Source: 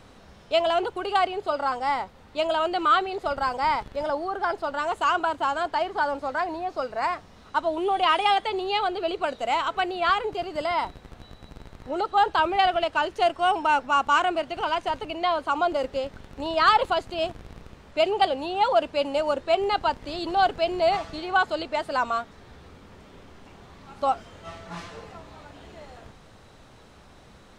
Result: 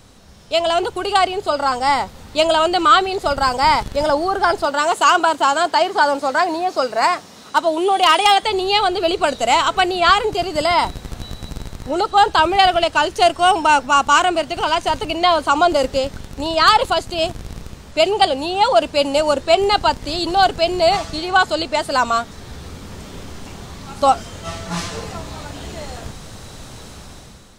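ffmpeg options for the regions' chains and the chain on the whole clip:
-filter_complex "[0:a]asettb=1/sr,asplit=3[a][b][c];[a]atrim=end=4.654[d];[b]atrim=start=4.65:end=8.43,asetpts=PTS-STARTPTS,afade=t=in:d=0.004:c=qsin,afade=t=out:st=3.776:d=0.004:c=qsin,highpass=220,asoftclip=type=hard:threshold=-13dB[e];[c]atrim=start=8.426[f];[d][e]acrossfade=d=0.004:c1=hsin:c2=qsin[g];[g][f]acrossfade=d=0.004:c1=qsin:c2=hsin,bass=f=250:g=5,treble=f=4k:g=12,dynaudnorm=f=240:g=5:m=11.5dB"

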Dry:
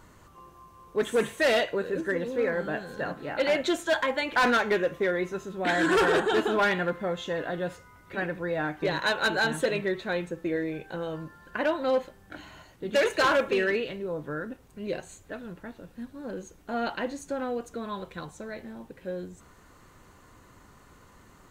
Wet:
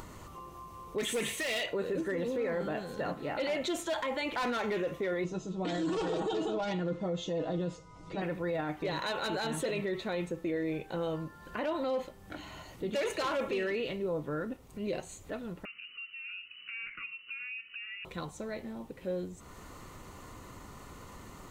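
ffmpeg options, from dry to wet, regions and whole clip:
-filter_complex "[0:a]asettb=1/sr,asplit=3[a][b][c];[a]atrim=end=0.984[d];[b]atrim=start=0.98:end=1.66,asetpts=PTS-STARTPTS,afade=t=in:d=0.004:c=qsin,afade=t=out:st=0.676:d=0.004:c=qsin,highshelf=f=1.6k:t=q:w=1.5:g=7.5,acompressor=threshold=-22dB:ratio=5:attack=3.2:release=140:knee=1:detection=peak,aeval=exprs='0.0944*(abs(mod(val(0)/0.0944+3,4)-2)-1)':c=same[e];[c]atrim=start=1.656[f];[d][e]acrossfade=d=0.004:c1=hsin:c2=qsin[g];[g][f]acrossfade=d=0.004:c1=qsin:c2=hsin,asettb=1/sr,asplit=3[h][i][j];[h]atrim=end=5.244[k];[i]atrim=start=5.24:end=8.22,asetpts=PTS-STARTPTS,afade=t=in:d=0.004:c=qsin,afade=t=out:st=2.976:d=0.004:c=qsin,lowpass=f=7.2k:w=0.5412,lowpass=f=7.2k:w=1.3066,equalizer=f=1.8k:w=0.98:g=-12,aecho=1:1:6.3:0.73,atrim=end_sample=131418[l];[j]atrim=start=8.216[m];[k][l]acrossfade=d=0.004:c1=hsin:c2=qsin[n];[n][m]acrossfade=d=0.004:c1=qsin:c2=hsin,asettb=1/sr,asplit=3[o][p][q];[o]atrim=end=15.654[r];[p]atrim=start=15.65:end=18.05,asetpts=PTS-STARTPTS,afade=t=in:d=0.004:c=qsin,afade=t=out:st=2.396:d=0.004:c=qsin,acompressor=threshold=-46dB:ratio=2:attack=3.2:release=140:knee=1:detection=peak,asuperstop=centerf=2200:order=4:qfactor=2.6,lowpass=f=2.6k:t=q:w=0.5098,lowpass=f=2.6k:t=q:w=0.6013,lowpass=f=2.6k:t=q:w=0.9,lowpass=f=2.6k:t=q:w=2.563,afreqshift=-3000[s];[q]atrim=start=18.046[t];[r][s]acrossfade=d=0.004:c1=hsin:c2=qsin[u];[u][t]acrossfade=d=0.004:c1=qsin:c2=hsin,equalizer=f=1.6k:w=7.9:g=-11,alimiter=level_in=2dB:limit=-24dB:level=0:latency=1:release=18,volume=-2dB,acompressor=mode=upward:threshold=-40dB:ratio=2.5"

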